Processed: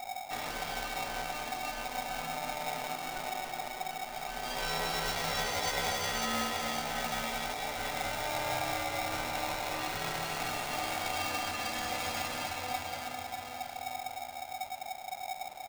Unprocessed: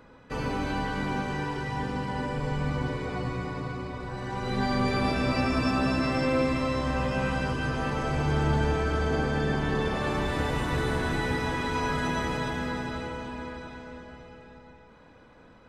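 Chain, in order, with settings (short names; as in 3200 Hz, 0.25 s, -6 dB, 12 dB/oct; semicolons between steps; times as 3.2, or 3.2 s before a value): tilt +3 dB/oct; added noise brown -41 dBFS; low shelf 340 Hz +5.5 dB; comb 1.5 ms, depth 53%; polarity switched at an audio rate 750 Hz; gain -8.5 dB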